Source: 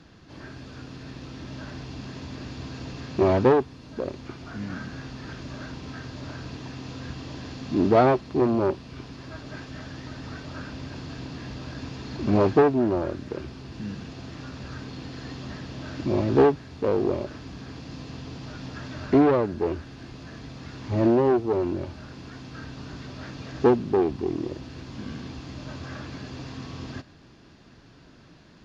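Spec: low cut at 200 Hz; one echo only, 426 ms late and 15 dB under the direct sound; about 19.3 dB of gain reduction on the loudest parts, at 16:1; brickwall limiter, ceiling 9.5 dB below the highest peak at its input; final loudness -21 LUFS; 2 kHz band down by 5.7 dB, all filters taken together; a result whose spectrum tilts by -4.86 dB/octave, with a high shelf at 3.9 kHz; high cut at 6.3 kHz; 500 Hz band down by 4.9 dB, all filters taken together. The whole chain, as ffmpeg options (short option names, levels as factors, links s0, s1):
-af "highpass=200,lowpass=6300,equalizer=f=500:t=o:g=-6,equalizer=f=2000:t=o:g=-9,highshelf=f=3900:g=6.5,acompressor=threshold=0.0158:ratio=16,alimiter=level_in=2.99:limit=0.0631:level=0:latency=1,volume=0.335,aecho=1:1:426:0.178,volume=13.3"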